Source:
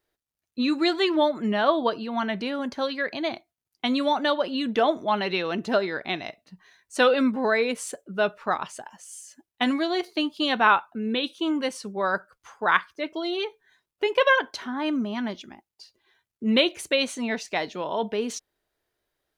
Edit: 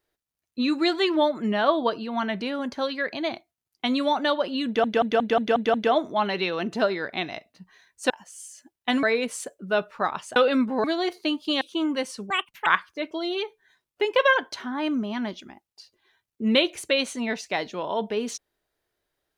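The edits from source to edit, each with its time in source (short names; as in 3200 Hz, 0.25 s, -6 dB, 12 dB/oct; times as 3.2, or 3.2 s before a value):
4.66 stutter 0.18 s, 7 plays
7.02–7.5 swap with 8.83–9.76
10.53–11.27 cut
11.96–12.68 speed 198%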